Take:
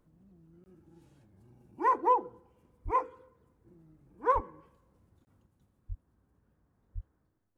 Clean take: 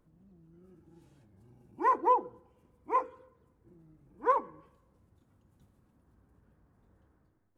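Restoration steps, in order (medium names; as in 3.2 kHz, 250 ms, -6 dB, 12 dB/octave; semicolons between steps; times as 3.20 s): de-plosive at 2.84/4.34/5.88/6.94 s; interpolate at 0.64/5.25 s, 20 ms; trim 0 dB, from 5.46 s +5.5 dB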